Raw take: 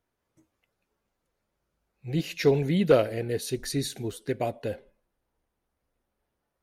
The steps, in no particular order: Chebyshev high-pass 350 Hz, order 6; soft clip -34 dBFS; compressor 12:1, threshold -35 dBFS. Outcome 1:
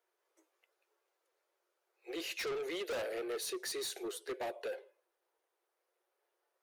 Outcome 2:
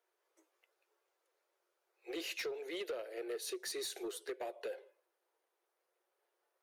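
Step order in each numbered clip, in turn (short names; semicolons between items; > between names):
Chebyshev high-pass > soft clip > compressor; Chebyshev high-pass > compressor > soft clip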